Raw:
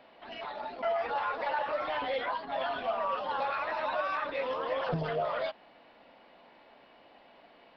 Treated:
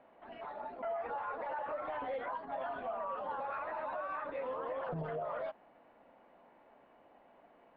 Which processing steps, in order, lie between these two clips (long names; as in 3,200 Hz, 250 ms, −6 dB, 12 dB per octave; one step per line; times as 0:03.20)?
low-pass filter 1,500 Hz 12 dB per octave
brickwall limiter −27 dBFS, peak gain reduction 7 dB
level −4 dB